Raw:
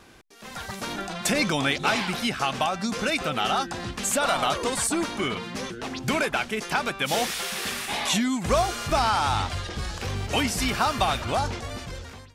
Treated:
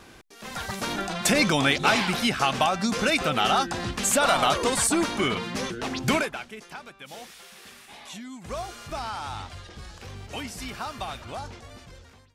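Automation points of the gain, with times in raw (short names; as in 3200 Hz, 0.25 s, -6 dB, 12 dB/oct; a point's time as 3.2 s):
6.15 s +2.5 dB
6.34 s -9 dB
6.9 s -17 dB
8.11 s -17 dB
8.65 s -10.5 dB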